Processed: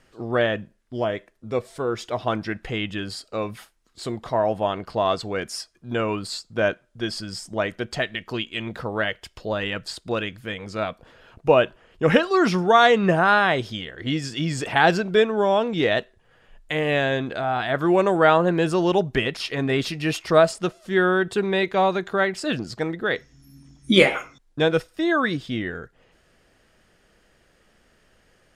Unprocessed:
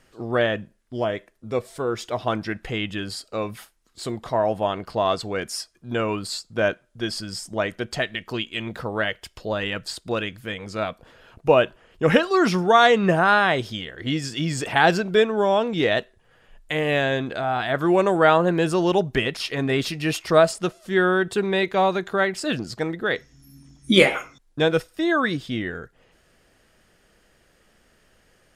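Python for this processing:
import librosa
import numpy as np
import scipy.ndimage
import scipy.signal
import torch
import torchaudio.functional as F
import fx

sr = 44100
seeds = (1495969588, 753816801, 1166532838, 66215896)

y = fx.high_shelf(x, sr, hz=10000.0, db=-8.0)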